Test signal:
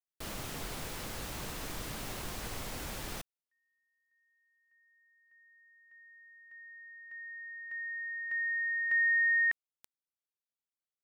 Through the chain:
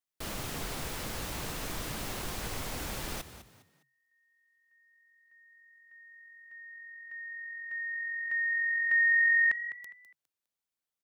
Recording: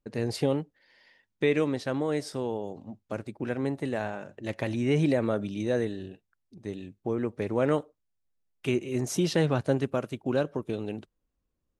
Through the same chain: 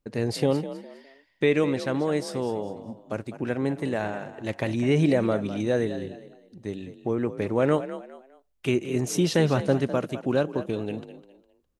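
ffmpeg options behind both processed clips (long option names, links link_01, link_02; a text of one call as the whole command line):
ffmpeg -i in.wav -filter_complex "[0:a]asplit=4[link_01][link_02][link_03][link_04];[link_02]adelay=204,afreqshift=44,volume=-13dB[link_05];[link_03]adelay=408,afreqshift=88,volume=-23.2dB[link_06];[link_04]adelay=612,afreqshift=132,volume=-33.3dB[link_07];[link_01][link_05][link_06][link_07]amix=inputs=4:normalize=0,volume=3dB" out.wav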